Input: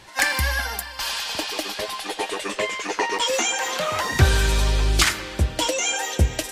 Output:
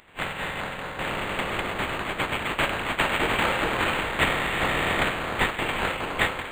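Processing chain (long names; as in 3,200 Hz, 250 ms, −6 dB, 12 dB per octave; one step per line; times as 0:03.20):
compressing power law on the bin magnitudes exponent 0.27
automatic gain control gain up to 7 dB
on a send: echo through a band-pass that steps 414 ms, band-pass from 2,700 Hz, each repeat −0.7 octaves, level −2.5 dB
on the sum: voice inversion scrambler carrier 3,700 Hz
linearly interpolated sample-rate reduction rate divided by 8×
level −1.5 dB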